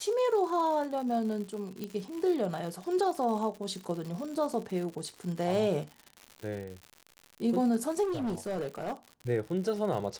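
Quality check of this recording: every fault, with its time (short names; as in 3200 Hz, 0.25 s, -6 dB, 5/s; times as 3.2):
crackle 130/s -37 dBFS
1.84 pop -23 dBFS
8.03–8.93 clipped -29 dBFS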